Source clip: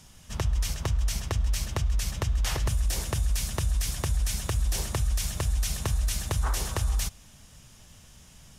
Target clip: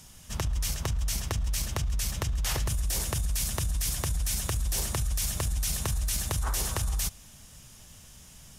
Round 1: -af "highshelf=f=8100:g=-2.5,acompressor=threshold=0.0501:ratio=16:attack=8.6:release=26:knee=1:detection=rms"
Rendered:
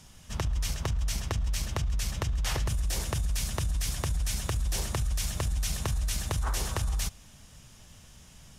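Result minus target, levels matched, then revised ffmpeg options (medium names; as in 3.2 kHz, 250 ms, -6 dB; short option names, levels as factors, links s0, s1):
8 kHz band -3.0 dB
-af "highshelf=f=8100:g=8.5,acompressor=threshold=0.0501:ratio=16:attack=8.6:release=26:knee=1:detection=rms"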